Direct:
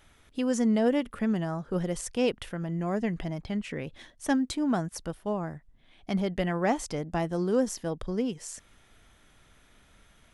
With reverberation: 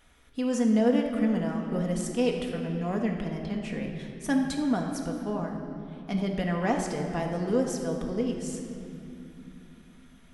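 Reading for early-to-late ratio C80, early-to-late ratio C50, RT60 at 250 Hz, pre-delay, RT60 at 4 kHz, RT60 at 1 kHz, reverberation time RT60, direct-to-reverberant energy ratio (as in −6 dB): 5.5 dB, 4.0 dB, 4.6 s, 4 ms, 2.0 s, 2.7 s, 2.9 s, 1.0 dB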